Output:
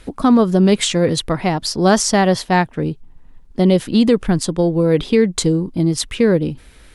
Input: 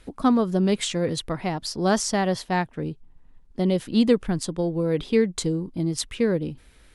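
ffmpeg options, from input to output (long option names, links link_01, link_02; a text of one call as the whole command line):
ffmpeg -i in.wav -af "alimiter=level_in=12dB:limit=-1dB:release=50:level=0:latency=1,volume=-3dB" out.wav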